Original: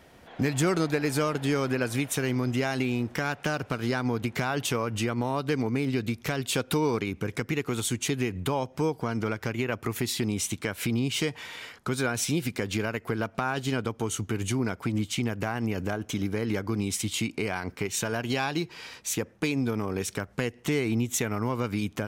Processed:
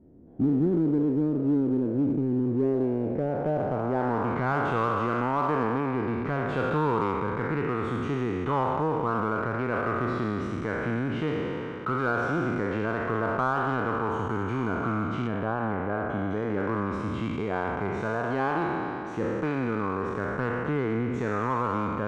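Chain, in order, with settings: spectral sustain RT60 2.78 s; low-pass sweep 300 Hz -> 1.2 kHz, 2.31–4.46 s; in parallel at -9 dB: overload inside the chain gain 22 dB; 15.27–16.31 s: on the sum: peaking EQ 5.9 kHz -10.5 dB 1.4 oct; trim -6 dB

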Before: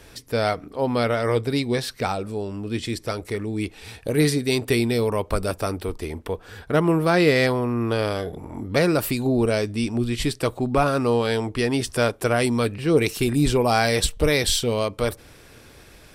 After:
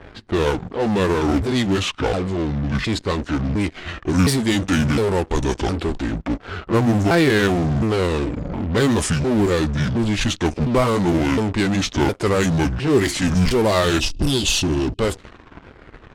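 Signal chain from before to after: sawtooth pitch modulation -9.5 st, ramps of 711 ms; spectral selection erased 14.00–15.00 s, 400–2500 Hz; in parallel at -11 dB: fuzz box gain 38 dB, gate -46 dBFS; on the sum: level-controlled noise filter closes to 1.6 kHz, open at -14 dBFS

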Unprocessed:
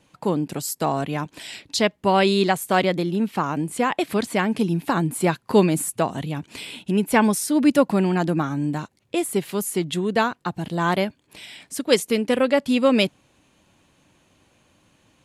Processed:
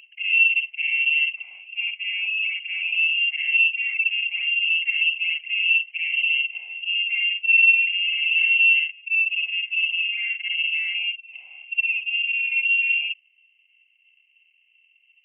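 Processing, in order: short-time spectra conjugated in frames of 136 ms; reverse; compression, threshold -29 dBFS, peak gain reduction 13.5 dB; reverse; waveshaping leveller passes 2; in parallel at +1 dB: peak limiter -25.5 dBFS, peak gain reduction 7.5 dB; on the sum: cascade formant filter u; reverse echo 599 ms -21.5 dB; frequency inversion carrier 3 kHz; trim +7.5 dB

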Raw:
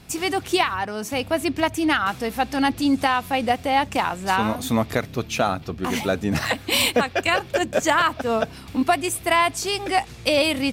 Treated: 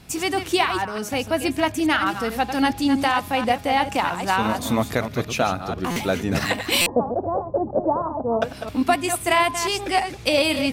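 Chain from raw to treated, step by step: chunks repeated in reverse 164 ms, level -8.5 dB; 6.83–8.42 s: steep low-pass 1 kHz 48 dB/octave; de-hum 205.2 Hz, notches 9; buffer glitch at 5.91/6.81 s, samples 256, times 8

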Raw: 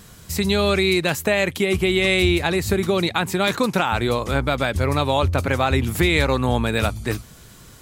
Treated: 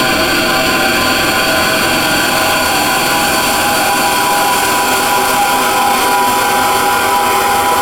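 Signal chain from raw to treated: high-pass 86 Hz; pre-emphasis filter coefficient 0.8; compression, threshold -32 dBFS, peak gain reduction 9 dB; flutter echo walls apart 8 m, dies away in 1.1 s; ring modulator 900 Hz; Paulstretch 38×, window 0.25 s, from 4.67 s; loudness maximiser +33 dB; trim -2 dB

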